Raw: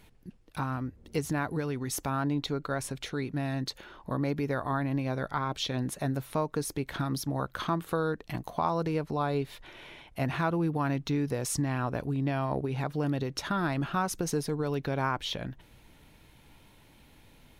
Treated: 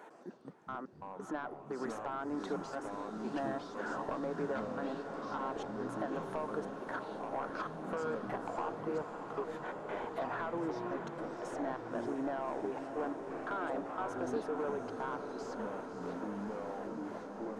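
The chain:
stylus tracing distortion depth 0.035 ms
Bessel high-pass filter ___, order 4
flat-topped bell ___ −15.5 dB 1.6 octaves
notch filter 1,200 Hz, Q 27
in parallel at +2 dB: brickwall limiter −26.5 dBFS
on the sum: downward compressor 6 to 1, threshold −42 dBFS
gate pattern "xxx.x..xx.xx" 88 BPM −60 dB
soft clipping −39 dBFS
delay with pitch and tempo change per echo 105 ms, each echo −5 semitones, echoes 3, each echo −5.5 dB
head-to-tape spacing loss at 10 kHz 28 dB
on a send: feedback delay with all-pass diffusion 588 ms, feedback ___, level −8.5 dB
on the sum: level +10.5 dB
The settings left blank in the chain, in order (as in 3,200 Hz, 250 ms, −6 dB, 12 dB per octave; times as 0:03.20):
560 Hz, 3,300 Hz, 80%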